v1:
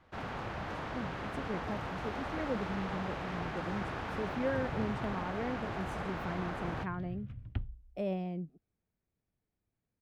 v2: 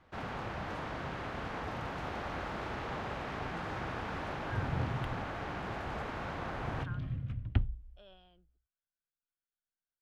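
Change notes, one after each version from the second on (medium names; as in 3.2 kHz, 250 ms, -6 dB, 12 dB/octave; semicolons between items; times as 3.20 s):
speech: add two resonant band-passes 2.2 kHz, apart 1.1 oct; second sound +7.0 dB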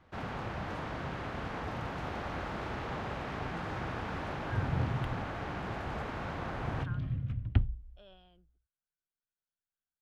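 master: add peaking EQ 110 Hz +3 dB 2.9 oct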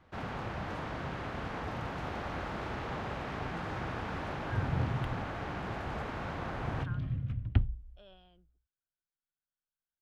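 no change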